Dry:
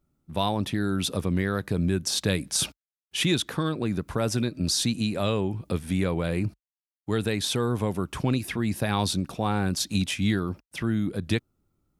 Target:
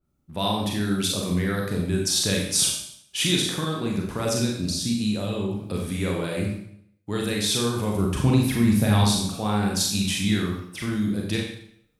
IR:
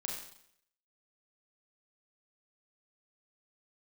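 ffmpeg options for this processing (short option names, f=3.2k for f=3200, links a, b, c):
-filter_complex "[0:a]asettb=1/sr,asplit=3[a][b][c];[a]atrim=end=4.664[d];[b]atrim=start=4.66:end=5.53,asetpts=PTS-STARTPTS,afade=t=in:d=0.004:c=qsin,afade=t=out:st=0.866:d=0.004:c=qsin,acrossover=split=370[e][f];[f]acompressor=threshold=-33dB:ratio=6[g];[e][g]amix=inputs=2:normalize=0[h];[c]atrim=start=5.526[i];[d][h]acrossfade=d=0.004:c1=hsin:c2=qsin[j];[j][i]acrossfade=d=0.004:c1=qsin:c2=hsin,asettb=1/sr,asplit=3[k][l][m];[k]atrim=end=7.954[n];[l]atrim=start=7.95:end=9.04,asetpts=PTS-STARTPTS,afade=t=in:d=0.004:c=qsin,afade=t=out:st=1.086:d=0.004:c=qsin,lowshelf=f=280:g=10.5[o];[m]atrim=start=9.036[p];[n][o]acrossfade=d=0.004:c1=hsin:c2=qsin[q];[q][p]acrossfade=d=0.004:c1=qsin:c2=hsin[r];[1:a]atrim=start_sample=2205[s];[r][s]afir=irnorm=-1:irlink=0,adynamicequalizer=threshold=0.00631:dfrequency=3300:dqfactor=0.7:tfrequency=3300:tqfactor=0.7:attack=5:release=100:ratio=0.375:range=3:mode=boostabove:tftype=highshelf"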